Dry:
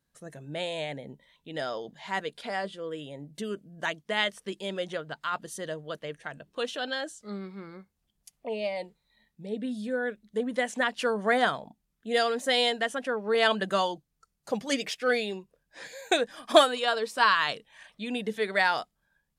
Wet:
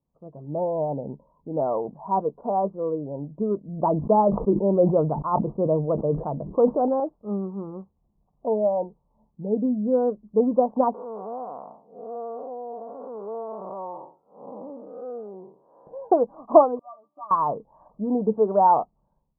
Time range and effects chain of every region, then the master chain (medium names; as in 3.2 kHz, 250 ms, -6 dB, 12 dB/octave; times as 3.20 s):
3.68–7.00 s: Bessel low-pass 5.5 kHz + tilt shelf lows +6 dB, about 1.2 kHz + decay stretcher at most 74 dB/s
10.94–15.87 s: spectral blur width 245 ms + high-pass 660 Hz 6 dB/octave + compression 2:1, threshold -44 dBFS
16.79–17.31 s: high-pass 430 Hz + static phaser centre 2.4 kHz, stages 8 + pitch-class resonator D, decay 0.11 s
whole clip: steep low-pass 1.1 kHz 72 dB/octave; dynamic bell 870 Hz, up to +4 dB, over -49 dBFS, Q 7.1; level rider gain up to 9.5 dB